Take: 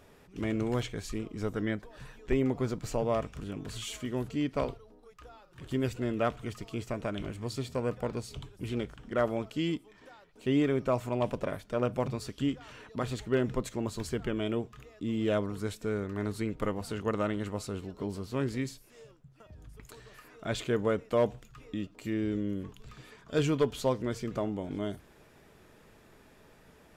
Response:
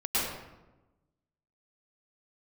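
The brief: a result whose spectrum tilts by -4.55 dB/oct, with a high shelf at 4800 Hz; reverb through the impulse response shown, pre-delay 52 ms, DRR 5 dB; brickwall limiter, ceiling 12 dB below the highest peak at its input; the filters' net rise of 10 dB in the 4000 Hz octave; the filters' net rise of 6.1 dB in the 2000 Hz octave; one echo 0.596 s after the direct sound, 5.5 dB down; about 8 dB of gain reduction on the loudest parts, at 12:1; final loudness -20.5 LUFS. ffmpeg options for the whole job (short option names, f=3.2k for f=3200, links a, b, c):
-filter_complex "[0:a]equalizer=f=2k:t=o:g=4.5,equalizer=f=4k:t=o:g=9,highshelf=f=4.8k:g=5.5,acompressor=threshold=-29dB:ratio=12,alimiter=level_in=6dB:limit=-24dB:level=0:latency=1,volume=-6dB,aecho=1:1:596:0.531,asplit=2[a][b];[1:a]atrim=start_sample=2205,adelay=52[c];[b][c]afir=irnorm=-1:irlink=0,volume=-15dB[d];[a][d]amix=inputs=2:normalize=0,volume=18dB"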